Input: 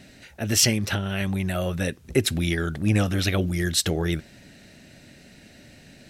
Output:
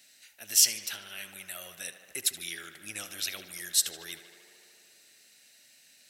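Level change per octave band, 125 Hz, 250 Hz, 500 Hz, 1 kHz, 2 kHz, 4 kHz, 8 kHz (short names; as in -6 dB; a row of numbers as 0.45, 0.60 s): -35.0, -28.5, -23.0, -15.5, -10.5, -4.0, 0.0 dB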